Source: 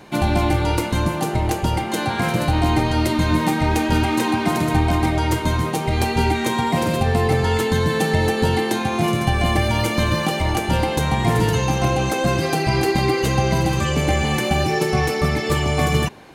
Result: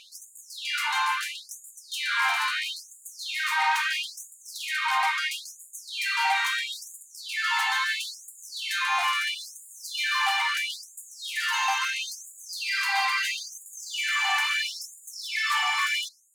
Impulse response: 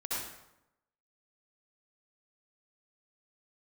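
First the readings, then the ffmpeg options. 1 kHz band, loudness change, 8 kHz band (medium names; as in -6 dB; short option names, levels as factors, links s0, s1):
-6.5 dB, -6.5 dB, -4.0 dB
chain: -filter_complex "[0:a]tiltshelf=f=800:g=-9,asplit=2[s0][s1];[s1]highpass=f=720:p=1,volume=11.2,asoftclip=type=tanh:threshold=0.668[s2];[s0][s2]amix=inputs=2:normalize=0,lowpass=f=1000:p=1,volume=0.501,afftfilt=real='re*gte(b*sr/1024,720*pow(6800/720,0.5+0.5*sin(2*PI*0.75*pts/sr)))':imag='im*gte(b*sr/1024,720*pow(6800/720,0.5+0.5*sin(2*PI*0.75*pts/sr)))':win_size=1024:overlap=0.75,volume=0.501"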